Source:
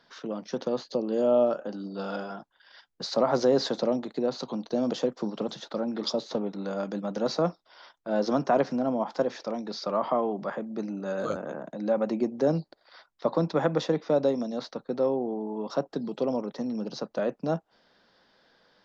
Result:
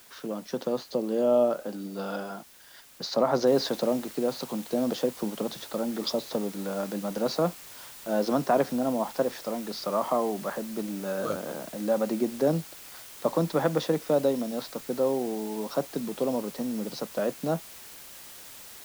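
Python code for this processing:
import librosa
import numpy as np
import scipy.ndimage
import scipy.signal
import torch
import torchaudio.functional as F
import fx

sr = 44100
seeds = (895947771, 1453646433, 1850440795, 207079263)

y = fx.noise_floor_step(x, sr, seeds[0], at_s=3.47, before_db=-54, after_db=-46, tilt_db=0.0)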